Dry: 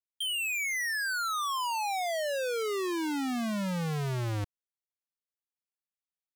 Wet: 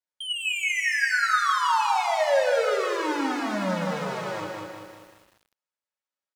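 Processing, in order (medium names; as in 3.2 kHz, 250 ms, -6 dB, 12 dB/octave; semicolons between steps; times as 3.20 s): band-pass 400–7400 Hz; feedback delay 157 ms, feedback 47%, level -9 dB; reverberation RT60 0.35 s, pre-delay 3 ms, DRR -4.5 dB; bit-crushed delay 195 ms, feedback 55%, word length 9-bit, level -4 dB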